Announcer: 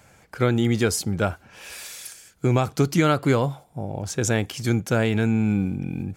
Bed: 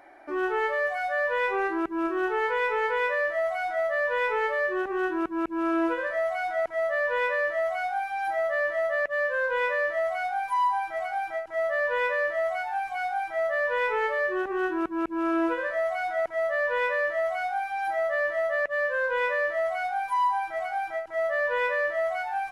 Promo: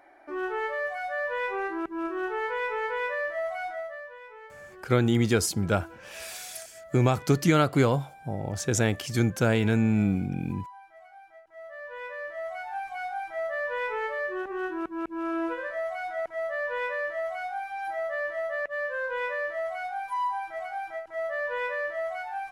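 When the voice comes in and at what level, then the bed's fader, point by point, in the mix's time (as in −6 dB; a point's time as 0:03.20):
4.50 s, −2.0 dB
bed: 0:03.66 −4 dB
0:04.20 −20.5 dB
0:11.32 −20.5 dB
0:12.76 −4.5 dB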